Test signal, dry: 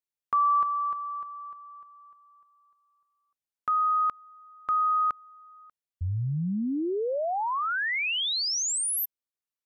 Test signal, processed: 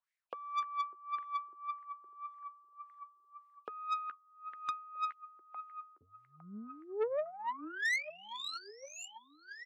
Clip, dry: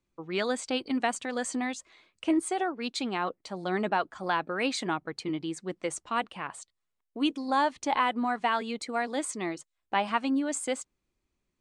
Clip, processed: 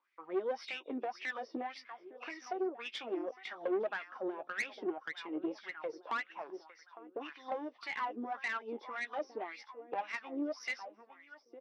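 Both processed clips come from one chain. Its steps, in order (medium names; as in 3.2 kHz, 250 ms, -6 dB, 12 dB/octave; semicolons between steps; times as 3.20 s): knee-point frequency compression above 2.4 kHz 1.5:1; tilt EQ +2 dB/octave; doubling 13 ms -10 dB; in parallel at -4 dB: overload inside the chain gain 18.5 dB; on the sum: tremolo 1.3 Hz, depth 33%; compression 3:1, threshold -35 dBFS; on a send: feedback delay 857 ms, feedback 37%, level -15.5 dB; on the sum: wah-wah 1.8 Hz 350–2100 Hz, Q 5.7; dynamic bell 1.2 kHz, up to -6 dB, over -55 dBFS, Q 0.74; valve stage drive 41 dB, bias 0.4; Chebyshev high-pass 270 Hz, order 2; trim +13.5 dB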